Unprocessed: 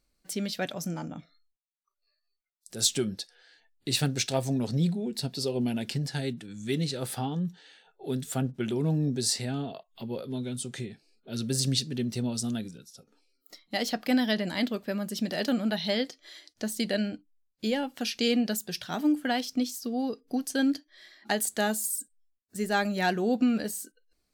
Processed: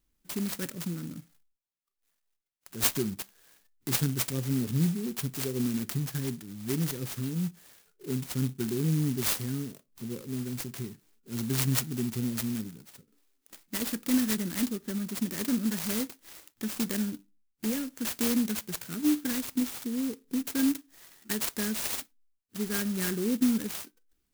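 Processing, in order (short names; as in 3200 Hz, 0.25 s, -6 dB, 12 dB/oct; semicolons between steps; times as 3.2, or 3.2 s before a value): Butterworth band-stop 780 Hz, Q 0.69; on a send at -21.5 dB: reverb RT60 0.35 s, pre-delay 30 ms; on the sum: clock jitter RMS 0.12 ms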